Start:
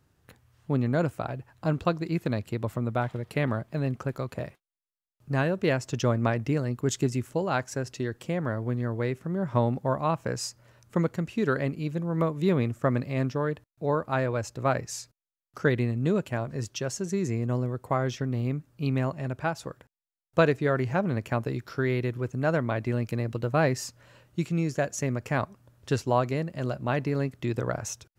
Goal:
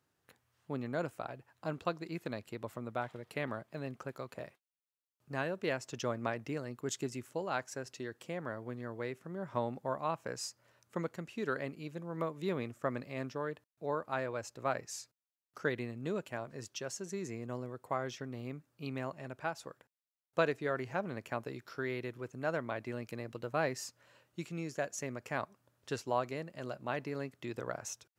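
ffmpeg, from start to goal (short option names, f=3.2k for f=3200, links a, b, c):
-af "highpass=f=380:p=1,volume=-7dB"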